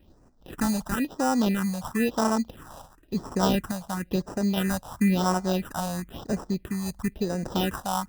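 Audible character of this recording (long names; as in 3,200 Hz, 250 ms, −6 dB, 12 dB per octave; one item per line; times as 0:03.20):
aliases and images of a low sample rate 2,200 Hz, jitter 0%
sample-and-hold tremolo
phaser sweep stages 4, 0.98 Hz, lowest notch 340–3,300 Hz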